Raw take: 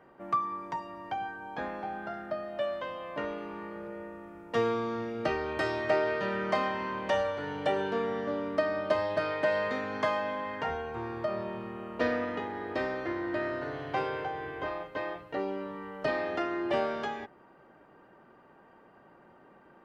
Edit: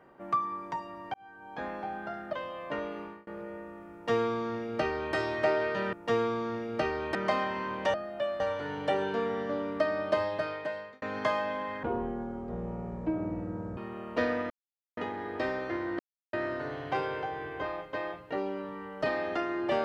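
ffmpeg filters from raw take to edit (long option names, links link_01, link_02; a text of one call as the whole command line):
ffmpeg -i in.wav -filter_complex "[0:a]asplit=13[link_01][link_02][link_03][link_04][link_05][link_06][link_07][link_08][link_09][link_10][link_11][link_12][link_13];[link_01]atrim=end=1.14,asetpts=PTS-STARTPTS,afade=type=out:start_time=1.136:duration=0.004:curve=hsin[link_14];[link_02]atrim=start=1.14:end=2.332,asetpts=PTS-STARTPTS,afade=type=in:duration=0.57[link_15];[link_03]atrim=start=2.788:end=3.73,asetpts=PTS-STARTPTS,afade=type=out:start_time=0.692:duration=0.25[link_16];[link_04]atrim=start=3.73:end=6.392,asetpts=PTS-STARTPTS,afade=type=in:duration=0.004:curve=hsin[link_17];[link_05]atrim=start=4.388:end=5.612[link_18];[link_06]atrim=start=6.388:end=7.182[link_19];[link_07]atrim=start=2.328:end=2.792[link_20];[link_08]atrim=start=7.178:end=9.8,asetpts=PTS-STARTPTS,afade=type=out:start_time=1.802:duration=0.82[link_21];[link_09]atrim=start=9.8:end=10.614,asetpts=PTS-STARTPTS,afade=type=in:duration=0.004:curve=hsin[link_22];[link_10]atrim=start=10.61:end=11.6,asetpts=PTS-STARTPTS,asetrate=22491,aresample=44100[link_23];[link_11]atrim=start=11.596:end=12.33,asetpts=PTS-STARTPTS,afade=type=out:start_time=0.73:duration=0.004:curve=hsin,apad=pad_dur=0.47[link_24];[link_12]atrim=start=12.33:end=13.35,asetpts=PTS-STARTPTS,afade=type=in:duration=0.004:curve=hsin,afade=type=out:start_time=1.016:duration=0.004:curve=hsin,apad=pad_dur=0.34[link_25];[link_13]atrim=start=13.35,asetpts=PTS-STARTPTS,afade=type=in:duration=0.004:curve=hsin[link_26];[link_14][link_15]concat=n=2:v=0:a=1[link_27];[link_16][link_17]concat=n=2:v=0:a=1[link_28];[link_27][link_28]acrossfade=duration=0.004:curve1=hsin:curve2=hsin[link_29];[link_29][link_18]acrossfade=duration=0.004:curve1=hsin:curve2=hsin[link_30];[link_30][link_19]acrossfade=duration=0.004:curve1=hsin:curve2=hsin[link_31];[link_31][link_20]acrossfade=duration=0.004:curve1=hsin:curve2=hsin[link_32];[link_21][link_22]concat=n=2:v=0:a=1[link_33];[link_32][link_33]acrossfade=duration=0.004:curve1=hsin:curve2=hsin[link_34];[link_34][link_23]acrossfade=duration=0.004:curve1=hsin:curve2=hsin[link_35];[link_24][link_25][link_26]concat=n=3:v=0:a=1[link_36];[link_35][link_36]acrossfade=duration=0.004:curve1=hsin:curve2=hsin" out.wav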